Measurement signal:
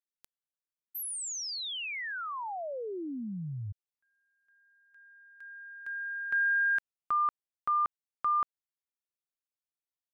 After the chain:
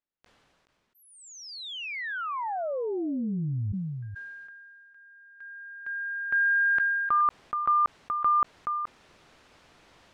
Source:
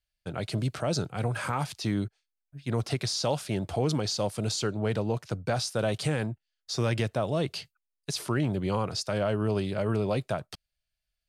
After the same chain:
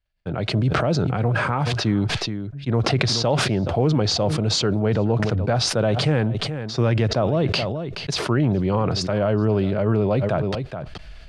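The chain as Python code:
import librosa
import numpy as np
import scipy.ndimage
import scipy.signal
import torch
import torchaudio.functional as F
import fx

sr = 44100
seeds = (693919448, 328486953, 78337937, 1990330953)

y = fx.spacing_loss(x, sr, db_at_10k=27)
y = y + 10.0 ** (-20.0 / 20.0) * np.pad(y, (int(425 * sr / 1000.0), 0))[:len(y)]
y = fx.sustainer(y, sr, db_per_s=22.0)
y = y * librosa.db_to_amplitude(8.0)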